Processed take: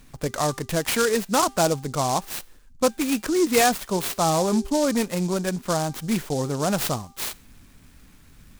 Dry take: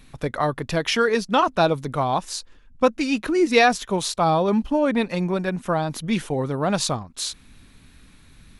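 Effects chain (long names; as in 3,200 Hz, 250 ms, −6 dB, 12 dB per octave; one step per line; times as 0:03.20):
in parallel at −4 dB: hard clipping −17.5 dBFS, distortion −10 dB
on the sum: hum removal 395.8 Hz, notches 40
short delay modulated by noise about 5,900 Hz, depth 0.066 ms
level −5 dB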